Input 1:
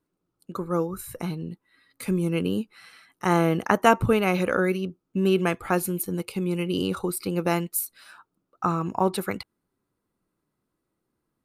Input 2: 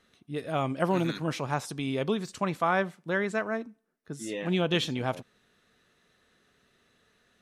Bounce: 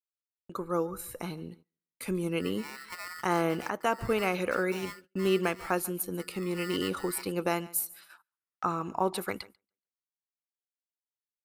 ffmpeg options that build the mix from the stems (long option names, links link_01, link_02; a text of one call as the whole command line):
ffmpeg -i stem1.wav -i stem2.wav -filter_complex "[0:a]agate=range=-33dB:threshold=-45dB:ratio=3:detection=peak,equalizer=frequency=140:width=0.84:gain=-7.5,volume=-2.5dB,asplit=2[link_01][link_02];[link_02]volume=-21dB[link_03];[1:a]lowpass=1300,aeval=exprs='val(0)*sgn(sin(2*PI*1600*n/s))':channel_layout=same,adelay=2100,volume=-15.5dB[link_04];[link_03]aecho=0:1:142|284|426|568:1|0.28|0.0784|0.022[link_05];[link_01][link_04][link_05]amix=inputs=3:normalize=0,agate=range=-20dB:threshold=-52dB:ratio=16:detection=peak,alimiter=limit=-15.5dB:level=0:latency=1:release=426" out.wav